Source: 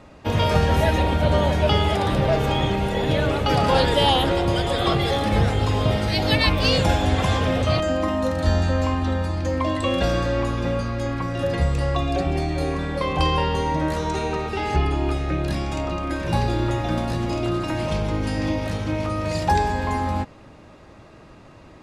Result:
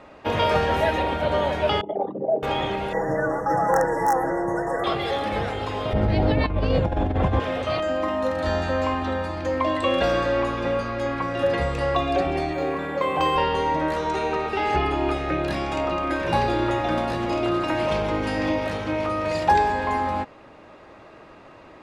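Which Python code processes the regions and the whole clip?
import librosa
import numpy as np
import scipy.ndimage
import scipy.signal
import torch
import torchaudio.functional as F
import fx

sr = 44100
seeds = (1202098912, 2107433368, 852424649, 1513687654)

y = fx.chain(x, sr, fx.envelope_sharpen(power=3.0),
    fx.highpass(hz=190.0, slope=24), at=(1.81, 2.43))
y = fx.chain(y, sr, fx.comb(ms=6.1, depth=0.9),
    fx.overflow_wrap(gain_db=4.5),
    fx.brickwall_bandstop(low_hz=2000.0, high_hz=5300.0), at=(2.93, 4.84))
y = fx.chain(y, sr, fx.tilt_eq(slope=-4.5),
    fx.over_compress(threshold_db=-8.0, ratio=-1.0), at=(5.93, 7.4))
y = fx.chain(y, sr, fx.highpass(hz=110.0, slope=12),
    fx.high_shelf(hz=7800.0, db=-7.5),
    fx.resample_linear(factor=4), at=(12.53, 13.36))
y = fx.bass_treble(y, sr, bass_db=-12, treble_db=-10)
y = fx.rider(y, sr, range_db=10, speed_s=2.0)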